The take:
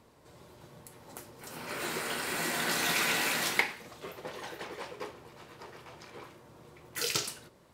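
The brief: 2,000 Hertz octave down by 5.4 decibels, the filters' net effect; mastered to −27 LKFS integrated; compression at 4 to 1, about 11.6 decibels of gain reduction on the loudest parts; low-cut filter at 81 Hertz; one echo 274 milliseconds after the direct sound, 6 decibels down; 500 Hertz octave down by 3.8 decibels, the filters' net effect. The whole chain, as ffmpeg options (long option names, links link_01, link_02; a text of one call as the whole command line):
ffmpeg -i in.wav -af "highpass=81,equalizer=frequency=500:width_type=o:gain=-4.5,equalizer=frequency=2000:width_type=o:gain=-6.5,acompressor=threshold=-42dB:ratio=4,aecho=1:1:274:0.501,volume=17dB" out.wav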